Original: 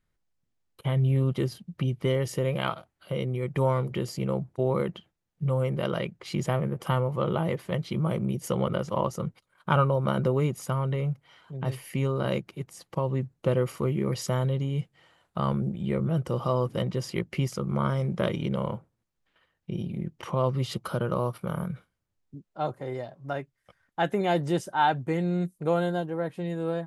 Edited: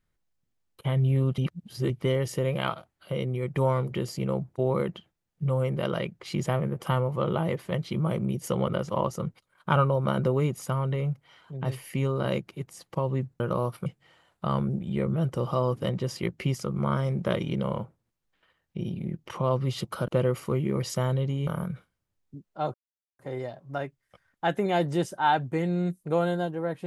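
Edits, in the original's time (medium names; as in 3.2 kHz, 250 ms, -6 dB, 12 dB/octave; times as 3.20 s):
1.38–1.90 s: reverse
13.40–14.79 s: swap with 21.01–21.47 s
22.74 s: insert silence 0.45 s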